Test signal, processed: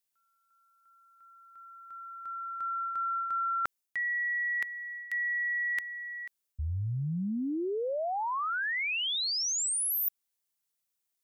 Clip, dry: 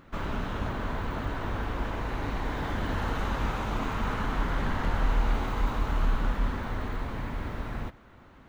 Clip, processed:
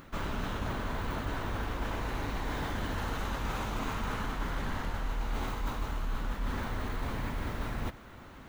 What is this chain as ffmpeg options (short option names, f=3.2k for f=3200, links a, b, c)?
-af "highshelf=f=4.9k:g=10.5,areverse,acompressor=threshold=-34dB:ratio=6,areverse,volume=3.5dB"